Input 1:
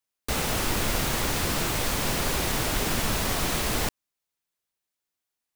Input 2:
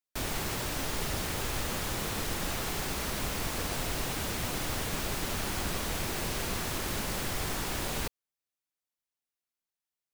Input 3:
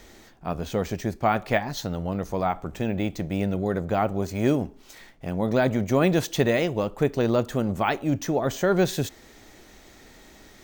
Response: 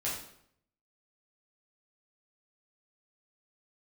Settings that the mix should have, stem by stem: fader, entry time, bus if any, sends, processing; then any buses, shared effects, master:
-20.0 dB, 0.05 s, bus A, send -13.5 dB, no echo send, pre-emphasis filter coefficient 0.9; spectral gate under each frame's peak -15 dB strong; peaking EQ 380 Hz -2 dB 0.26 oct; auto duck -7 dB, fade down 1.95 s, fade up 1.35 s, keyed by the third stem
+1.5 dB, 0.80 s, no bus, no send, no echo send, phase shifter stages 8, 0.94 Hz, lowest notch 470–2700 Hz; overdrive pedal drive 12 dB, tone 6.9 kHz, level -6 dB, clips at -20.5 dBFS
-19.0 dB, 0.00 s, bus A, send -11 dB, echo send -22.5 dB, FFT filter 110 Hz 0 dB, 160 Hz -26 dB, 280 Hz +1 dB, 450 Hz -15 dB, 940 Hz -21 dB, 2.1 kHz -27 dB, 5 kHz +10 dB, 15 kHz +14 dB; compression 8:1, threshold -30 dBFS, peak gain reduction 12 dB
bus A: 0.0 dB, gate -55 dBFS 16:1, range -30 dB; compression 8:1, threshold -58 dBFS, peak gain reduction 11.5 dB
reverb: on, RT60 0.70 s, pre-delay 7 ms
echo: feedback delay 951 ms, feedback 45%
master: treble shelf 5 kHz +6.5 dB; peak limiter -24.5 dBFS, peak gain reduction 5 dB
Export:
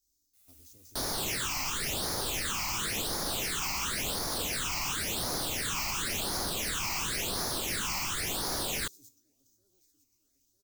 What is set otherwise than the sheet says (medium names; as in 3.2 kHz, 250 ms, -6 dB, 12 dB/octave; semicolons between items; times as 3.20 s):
stem 1 -20.0 dB -> -29.0 dB; stem 3: send -11 dB -> -20 dB